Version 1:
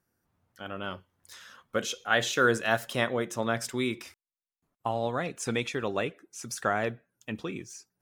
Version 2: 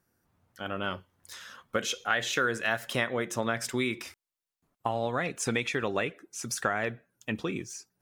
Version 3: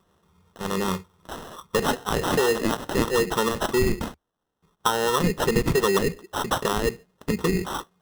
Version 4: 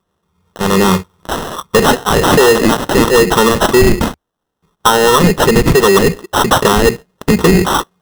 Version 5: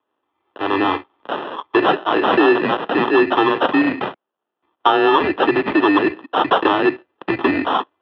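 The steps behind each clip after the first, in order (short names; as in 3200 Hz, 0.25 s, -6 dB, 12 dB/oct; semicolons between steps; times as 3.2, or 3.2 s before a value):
dynamic EQ 2000 Hz, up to +6 dB, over -42 dBFS, Q 1.5; compressor 4:1, threshold -29 dBFS, peak gain reduction 11.5 dB; gain +3.5 dB
ripple EQ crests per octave 0.8, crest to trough 18 dB; in parallel at +1 dB: limiter -20.5 dBFS, peak gain reduction 9 dB; on the sum: sample-rate reducer 2300 Hz, jitter 0%
AGC gain up to 12.5 dB; sample leveller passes 2
mistuned SSB -92 Hz 380–3300 Hz; gain -3.5 dB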